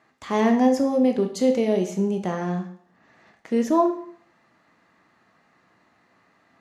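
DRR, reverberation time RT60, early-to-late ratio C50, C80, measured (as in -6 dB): 4.0 dB, 0.55 s, 9.0 dB, 13.5 dB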